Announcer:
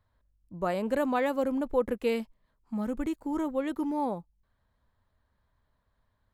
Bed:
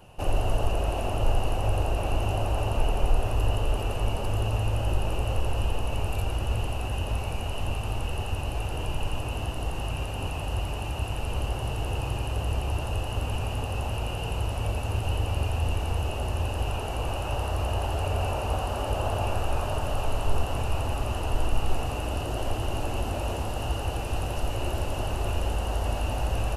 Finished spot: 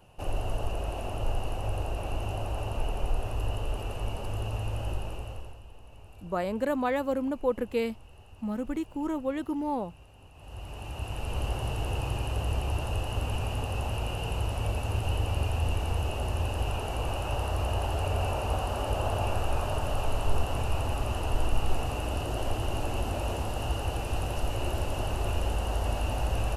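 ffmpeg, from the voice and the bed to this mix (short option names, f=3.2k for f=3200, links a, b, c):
-filter_complex "[0:a]adelay=5700,volume=-0.5dB[a];[1:a]volume=14.5dB,afade=t=out:st=4.87:d=0.73:silence=0.158489,afade=t=in:st=10.34:d=1.15:silence=0.0944061[b];[a][b]amix=inputs=2:normalize=0"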